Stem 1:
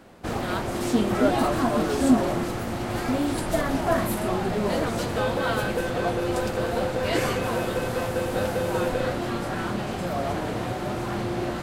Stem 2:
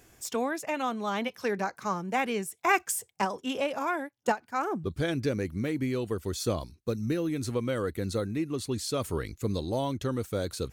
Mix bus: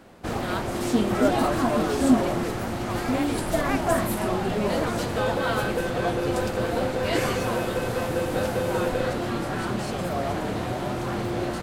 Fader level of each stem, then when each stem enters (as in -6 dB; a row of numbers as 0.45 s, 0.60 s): 0.0 dB, -7.0 dB; 0.00 s, 1.00 s